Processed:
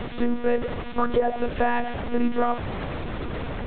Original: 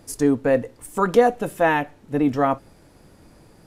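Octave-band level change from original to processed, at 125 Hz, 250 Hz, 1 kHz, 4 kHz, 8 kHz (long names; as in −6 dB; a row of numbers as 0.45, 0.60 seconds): −2.0 dB, −4.0 dB, −3.5 dB, +0.5 dB, below −40 dB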